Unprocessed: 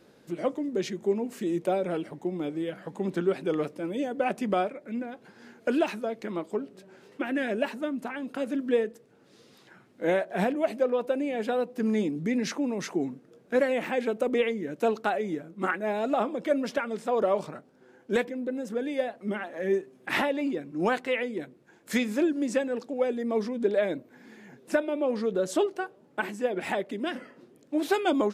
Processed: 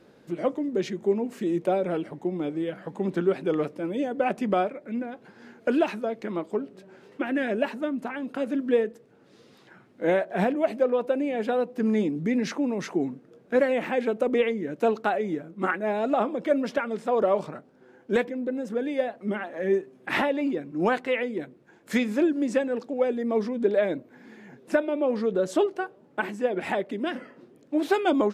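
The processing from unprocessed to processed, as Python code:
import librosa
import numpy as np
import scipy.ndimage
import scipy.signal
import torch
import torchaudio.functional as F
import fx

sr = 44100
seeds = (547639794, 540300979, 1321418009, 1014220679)

y = fx.high_shelf(x, sr, hz=4300.0, db=-8.0)
y = F.gain(torch.from_numpy(y), 2.5).numpy()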